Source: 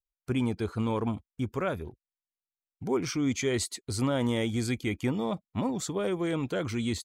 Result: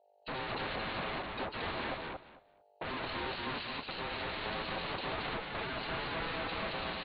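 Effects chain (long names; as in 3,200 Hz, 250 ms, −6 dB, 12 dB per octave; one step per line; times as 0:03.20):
hearing-aid frequency compression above 3,100 Hz 4 to 1
0:01.49–0:03.12: high-pass filter 63 Hz 6 dB per octave
in parallel at +1 dB: compressor whose output falls as the input rises −40 dBFS, ratio −1
on the sum: leveller curve on the samples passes 3
wave folding −30.5 dBFS
mains hum 50 Hz, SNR 29 dB
repeating echo 225 ms, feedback 17%, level −3 dB
on a send at −23 dB: convolution reverb RT60 0.65 s, pre-delay 107 ms
on the sum: downsampling to 8,000 Hz
ring modulation 650 Hz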